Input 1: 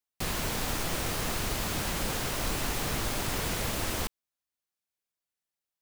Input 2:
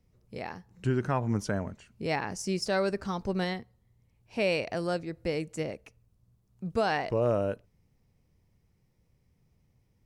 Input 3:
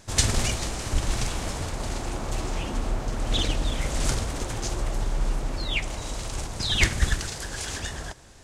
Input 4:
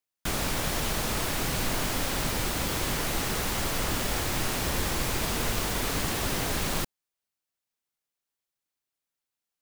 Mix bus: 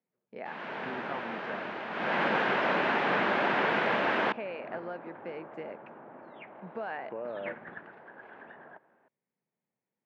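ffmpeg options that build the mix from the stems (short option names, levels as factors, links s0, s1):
-filter_complex "[0:a]dynaudnorm=f=120:g=5:m=3.98,adelay=250,volume=0.531,afade=t=in:st=1.9:d=0.32:silence=0.298538[s0];[1:a]acompressor=threshold=0.0224:ratio=6,agate=range=0.316:threshold=0.00158:ratio=16:detection=peak,volume=0.708[s1];[2:a]lowpass=1400,adelay=650,volume=0.266[s2];[s0][s1][s2]amix=inputs=3:normalize=0,highpass=f=210:w=0.5412,highpass=f=210:w=1.3066,equalizer=f=290:t=q:w=4:g=-4,equalizer=f=630:t=q:w=4:g=3,equalizer=f=890:t=q:w=4:g=4,equalizer=f=1600:t=q:w=4:g=6,lowpass=f=2700:w=0.5412,lowpass=f=2700:w=1.3066"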